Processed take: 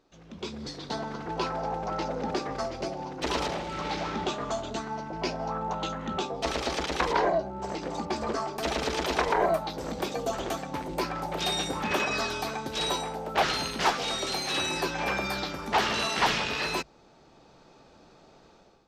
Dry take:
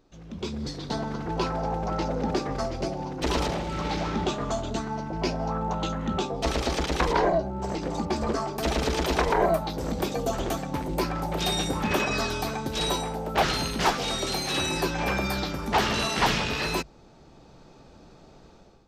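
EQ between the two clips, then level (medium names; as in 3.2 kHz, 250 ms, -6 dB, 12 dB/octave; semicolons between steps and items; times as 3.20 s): bass shelf 140 Hz -7 dB; bass shelf 420 Hz -5 dB; treble shelf 9.8 kHz -9 dB; 0.0 dB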